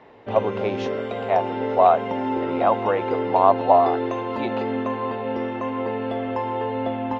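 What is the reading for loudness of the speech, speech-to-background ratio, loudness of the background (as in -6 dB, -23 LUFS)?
-22.0 LUFS, 5.0 dB, -27.0 LUFS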